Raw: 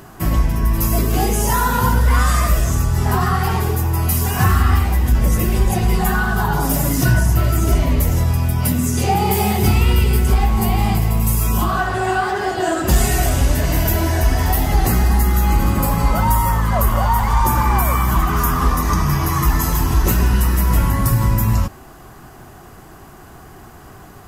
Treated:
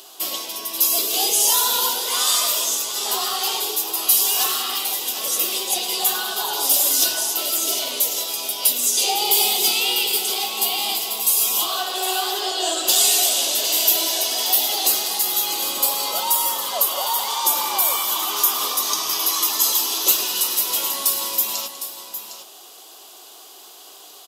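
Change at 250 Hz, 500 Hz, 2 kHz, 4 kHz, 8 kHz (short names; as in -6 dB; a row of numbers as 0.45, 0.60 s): -18.0, -7.0, -6.0, +11.5, +8.0 dB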